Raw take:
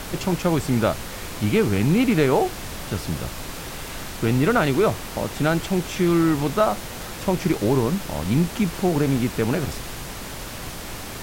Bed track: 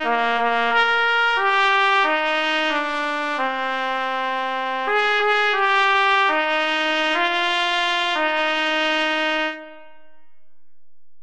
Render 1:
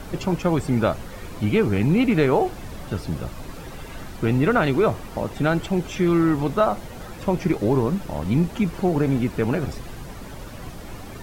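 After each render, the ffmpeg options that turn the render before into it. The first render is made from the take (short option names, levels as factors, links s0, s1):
-af "afftdn=nr=11:nf=-34"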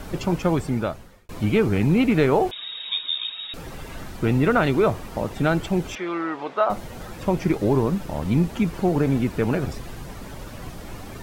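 -filter_complex "[0:a]asettb=1/sr,asplit=3[s0][s1][s2];[s0]atrim=end=2.514[s3];[s1]atrim=start=2.51:end=3.54,asetpts=PTS-STARTPTS,afade=t=in:d=0.004:c=qsin,afade=t=out:st=1.026:d=0.004:c=qsin,lowpass=f=3200:t=q:w=0.5098,lowpass=f=3200:t=q:w=0.6013,lowpass=f=3200:t=q:w=0.9,lowpass=f=3200:t=q:w=2.563,afreqshift=-3800[s4];[s2]atrim=start=3.536[s5];[s3][s4]acrossfade=d=0.004:c1=hsin:c2=qsin[s6];[s6][s5]acrossfade=d=0.004:c1=qsin:c2=hsin,asettb=1/sr,asplit=3[s7][s8][s9];[s7]atrim=end=5.954[s10];[s8]atrim=start=5.95:end=6.7,asetpts=PTS-STARTPTS,afade=t=in:d=0.004:c=qsin,afade=t=out:st=0.746:d=0.004:c=qsin,highpass=550,lowpass=3400[s11];[s9]atrim=start=6.696[s12];[s10][s11]acrossfade=d=0.004:c1=hsin:c2=qsin[s13];[s13][s12]acrossfade=d=0.004:c1=qsin:c2=hsin,asplit=2[s14][s15];[s14]atrim=end=1.29,asetpts=PTS-STARTPTS,afade=t=out:st=0.49:d=0.8[s16];[s15]atrim=start=1.29,asetpts=PTS-STARTPTS,afade=t=in:d=0.004:c=hsin[s17];[s16][s17]concat=n=2:v=0:a=1"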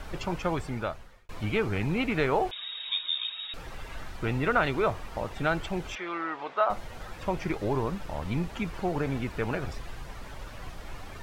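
-af "lowpass=f=3100:p=1,equalizer=f=220:t=o:w=2.9:g=-11.5"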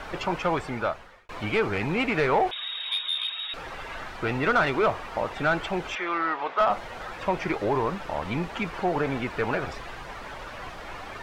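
-filter_complex "[0:a]asplit=2[s0][s1];[s1]highpass=f=720:p=1,volume=6.31,asoftclip=type=tanh:threshold=0.251[s2];[s0][s2]amix=inputs=2:normalize=0,lowpass=f=2000:p=1,volume=0.501"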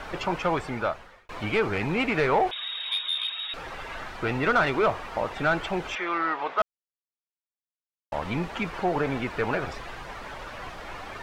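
-filter_complex "[0:a]asplit=3[s0][s1][s2];[s0]atrim=end=6.62,asetpts=PTS-STARTPTS,afade=t=out:st=6.616:d=0.004:c=hsin[s3];[s1]atrim=start=6.62:end=8.12,asetpts=PTS-STARTPTS,volume=0[s4];[s2]atrim=start=8.12,asetpts=PTS-STARTPTS,afade=t=in:d=0.004:c=hsin[s5];[s3][s4][s5]concat=n=3:v=0:a=1"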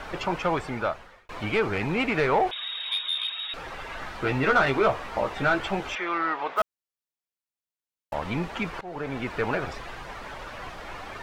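-filter_complex "[0:a]asettb=1/sr,asplit=3[s0][s1][s2];[s0]atrim=end=4.004[s3];[s1]atrim=start=4:end=5.93,asetpts=PTS-STARTPTS,afade=t=in:d=0.004:c=qsin,afade=t=out:st=1.926:d=0.004:c=qsin,asplit=2[s4][s5];[s5]adelay=15,volume=0.562[s6];[s4][s6]amix=inputs=2:normalize=0,atrim=end_sample=85113[s7];[s2]atrim=start=5.926[s8];[s3][s7]acrossfade=d=0.004:c1=hsin:c2=qsin[s9];[s9][s8]acrossfade=d=0.004:c1=qsin:c2=hsin,asettb=1/sr,asplit=3[s10][s11][s12];[s10]atrim=end=6.564[s13];[s11]atrim=start=6.56:end=8.14,asetpts=PTS-STARTPTS,afade=t=in:d=0.004:c=qsin,afade=t=out:st=1.576:d=0.004:c=qsin,acrusher=bits=6:mode=log:mix=0:aa=0.000001[s14];[s12]atrim=start=8.136[s15];[s13][s14]acrossfade=d=0.004:c1=hsin:c2=qsin[s16];[s16][s15]acrossfade=d=0.004:c1=qsin:c2=hsin,asplit=2[s17][s18];[s17]atrim=end=8.81,asetpts=PTS-STARTPTS,afade=t=out:st=8.806:d=0.004:c=hsin:silence=0.0944061[s19];[s18]atrim=start=8.81,asetpts=PTS-STARTPTS,afade=t=in:d=0.5:silence=0.0944061[s20];[s19][s20]concat=n=2:v=0:a=1"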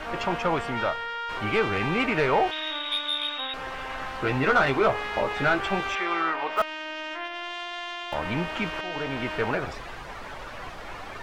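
-filter_complex "[1:a]volume=0.188[s0];[0:a][s0]amix=inputs=2:normalize=0"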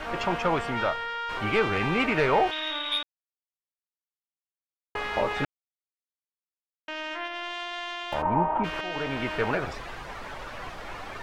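-filter_complex "[0:a]asplit=3[s0][s1][s2];[s0]afade=t=out:st=8.21:d=0.02[s3];[s1]lowpass=f=900:t=q:w=5.6,afade=t=in:st=8.21:d=0.02,afade=t=out:st=8.63:d=0.02[s4];[s2]afade=t=in:st=8.63:d=0.02[s5];[s3][s4][s5]amix=inputs=3:normalize=0,asplit=5[s6][s7][s8][s9][s10];[s6]atrim=end=3.03,asetpts=PTS-STARTPTS,afade=t=out:st=3.026:d=0.004:c=hsin[s11];[s7]atrim=start=3.03:end=4.95,asetpts=PTS-STARTPTS,volume=0[s12];[s8]atrim=start=4.95:end=5.45,asetpts=PTS-STARTPTS,afade=t=in:d=0.004:c=hsin,afade=t=out:st=0.496:d=0.004:c=hsin[s13];[s9]atrim=start=5.45:end=6.88,asetpts=PTS-STARTPTS,volume=0[s14];[s10]atrim=start=6.88,asetpts=PTS-STARTPTS,afade=t=in:d=0.004:c=hsin[s15];[s11][s12][s13][s14][s15]concat=n=5:v=0:a=1"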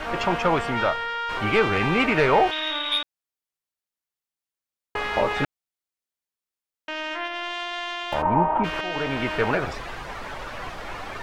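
-af "volume=1.58"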